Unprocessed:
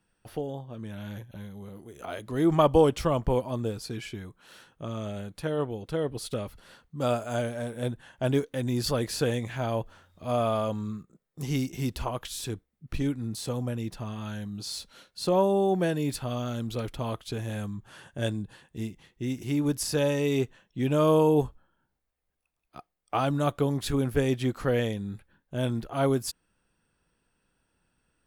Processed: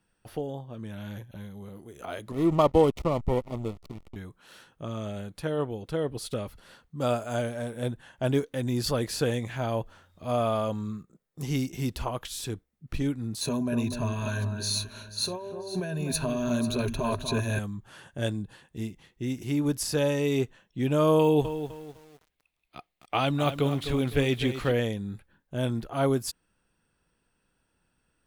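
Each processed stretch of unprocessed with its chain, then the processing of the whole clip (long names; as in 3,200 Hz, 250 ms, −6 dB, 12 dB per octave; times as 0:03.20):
0:02.32–0:04.16: slack as between gear wheels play −26 dBFS + Butterworth band-reject 1,600 Hz, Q 3.9
0:13.41–0:17.59: EQ curve with evenly spaced ripples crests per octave 1.5, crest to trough 14 dB + compressor whose output falls as the input rises −30 dBFS + delay that swaps between a low-pass and a high-pass 246 ms, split 1,700 Hz, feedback 52%, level −7 dB
0:21.19–0:24.72: de-essing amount 85% + flat-topped bell 2,900 Hz +8 dB 1.3 octaves + feedback echo at a low word length 254 ms, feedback 35%, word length 8 bits, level −10.5 dB
whole clip: no processing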